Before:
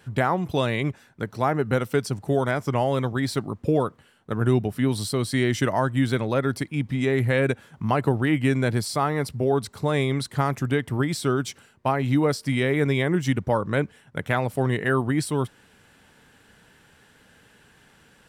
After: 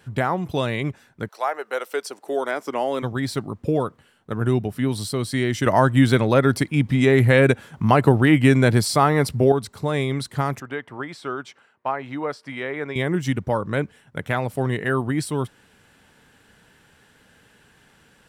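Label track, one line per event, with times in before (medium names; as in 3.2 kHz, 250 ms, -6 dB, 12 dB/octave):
1.270000	3.020000	high-pass 610 Hz -> 220 Hz 24 dB/octave
5.660000	9.520000	gain +6.5 dB
10.600000	12.960000	band-pass filter 1.1 kHz, Q 0.75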